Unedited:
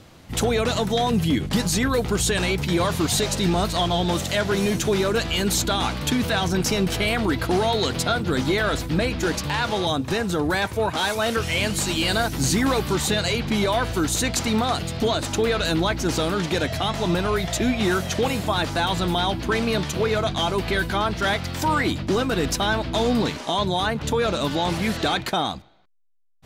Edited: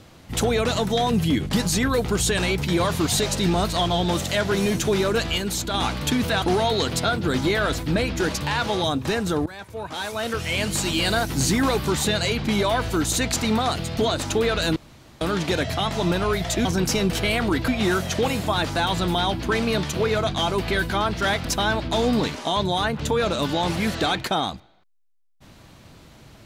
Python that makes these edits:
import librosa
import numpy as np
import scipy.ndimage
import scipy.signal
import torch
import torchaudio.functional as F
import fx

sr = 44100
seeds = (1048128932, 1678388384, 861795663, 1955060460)

y = fx.edit(x, sr, fx.clip_gain(start_s=5.38, length_s=0.36, db=-4.5),
    fx.move(start_s=6.42, length_s=1.03, to_s=17.68),
    fx.fade_in_from(start_s=10.49, length_s=1.35, floor_db=-19.5),
    fx.room_tone_fill(start_s=15.79, length_s=0.45),
    fx.cut(start_s=21.45, length_s=1.02), tone=tone)